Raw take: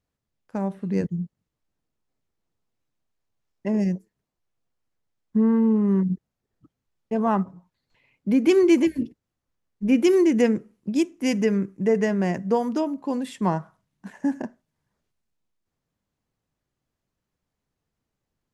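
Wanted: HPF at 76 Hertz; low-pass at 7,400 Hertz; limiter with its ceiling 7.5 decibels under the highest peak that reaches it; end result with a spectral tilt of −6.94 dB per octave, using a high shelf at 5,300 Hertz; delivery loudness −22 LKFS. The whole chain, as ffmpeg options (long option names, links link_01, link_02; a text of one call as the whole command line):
ffmpeg -i in.wav -af "highpass=76,lowpass=7400,highshelf=frequency=5300:gain=5.5,volume=3.5dB,alimiter=limit=-12dB:level=0:latency=1" out.wav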